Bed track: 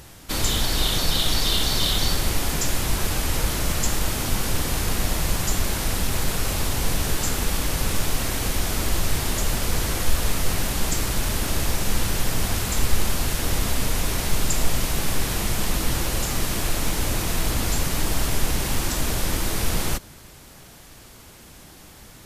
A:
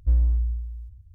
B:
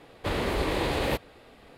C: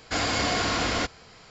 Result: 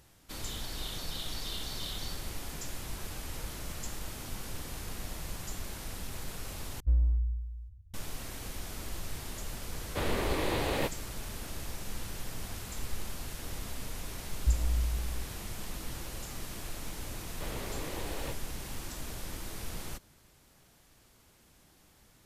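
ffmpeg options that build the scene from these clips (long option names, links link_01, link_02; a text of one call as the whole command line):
ffmpeg -i bed.wav -i cue0.wav -i cue1.wav -filter_complex "[1:a]asplit=2[link_01][link_02];[2:a]asplit=2[link_03][link_04];[0:a]volume=-16.5dB[link_05];[link_02]bandreject=frequency=60:width_type=h:width=6,bandreject=frequency=120:width_type=h:width=6,bandreject=frequency=180:width_type=h:width=6,bandreject=frequency=240:width_type=h:width=6,bandreject=frequency=300:width_type=h:width=6,bandreject=frequency=360:width_type=h:width=6,bandreject=frequency=420:width_type=h:width=6,bandreject=frequency=480:width_type=h:width=6,bandreject=frequency=540:width_type=h:width=6,bandreject=frequency=600:width_type=h:width=6[link_06];[link_05]asplit=2[link_07][link_08];[link_07]atrim=end=6.804[link_09];[link_01]atrim=end=1.14,asetpts=PTS-STARTPTS,volume=-6dB[link_10];[link_08]atrim=start=7.936[link_11];[link_03]atrim=end=1.77,asetpts=PTS-STARTPTS,volume=-4dB,afade=type=in:duration=0.004:curve=hsin,afade=type=out:start_time=1.766:duration=0.004:curve=hsin,adelay=9710[link_12];[link_06]atrim=end=1.14,asetpts=PTS-STARTPTS,volume=-1dB,afade=type=in:duration=0.004:curve=hsin,afade=type=out:start_time=1.136:duration=0.004:curve=hsin,adelay=14400[link_13];[link_04]atrim=end=1.77,asetpts=PTS-STARTPTS,volume=-13.5dB,afade=type=in:duration=0.004:curve=hsin,afade=type=out:start_time=1.766:duration=0.004:curve=hsin,adelay=756756S[link_14];[link_09][link_10]acrossfade=duration=0.004:curve1=hsin:curve2=hsin[link_15];[link_15][link_11]acrossfade=duration=0.004:curve1=hsin:curve2=hsin[link_16];[link_16][link_12][link_13][link_14]amix=inputs=4:normalize=0" out.wav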